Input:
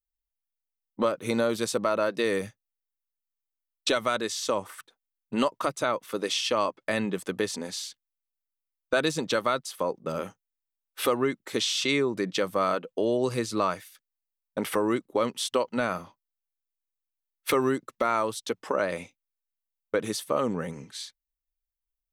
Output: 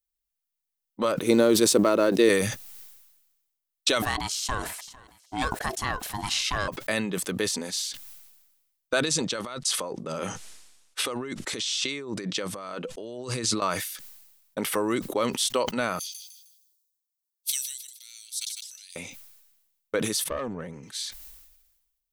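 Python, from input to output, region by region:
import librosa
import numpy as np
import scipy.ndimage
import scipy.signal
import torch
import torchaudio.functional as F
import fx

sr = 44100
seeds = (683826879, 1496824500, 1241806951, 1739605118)

y = fx.chain(x, sr, fx.law_mismatch(coded='A'),
    fx.peak_eq(hz=340.0, db=12.5, octaves=1.3), at=(1.22, 2.29))
y = fx.chain(y, sr, fx.echo_feedback(ms=452, feedback_pct=36, wet_db=-22.5),
    fx.ring_mod(carrier_hz=520.0), at=(4.02, 6.68))
y = fx.chain(y, sr, fx.over_compress(threshold_db=-34.0, ratio=-1.0),
    fx.lowpass(hz=9300.0, slope=24), at=(9.03, 13.62))
y = fx.chain(y, sr, fx.cheby2_highpass(hz=1200.0, order=4, stop_db=60),
    fx.echo_feedback(ms=155, feedback_pct=40, wet_db=-13), at=(15.99, 18.96))
y = fx.chain(y, sr, fx.lowpass(hz=1600.0, slope=6),
    fx.tube_stage(drive_db=21.0, bias=0.6), at=(20.24, 20.83))
y = fx.high_shelf(y, sr, hz=2900.0, db=8.5)
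y = fx.sustainer(y, sr, db_per_s=50.0)
y = y * librosa.db_to_amplitude(-1.5)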